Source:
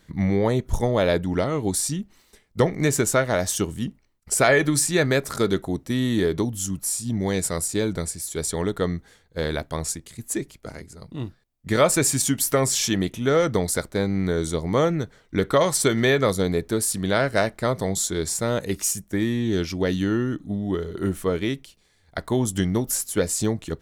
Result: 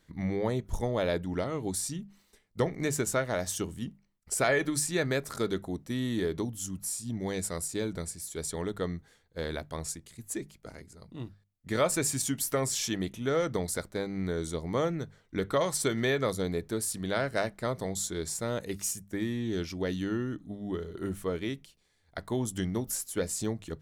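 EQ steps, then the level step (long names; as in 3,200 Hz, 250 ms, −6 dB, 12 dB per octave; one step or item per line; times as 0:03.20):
mains-hum notches 50/100/150/200 Hz
−8.5 dB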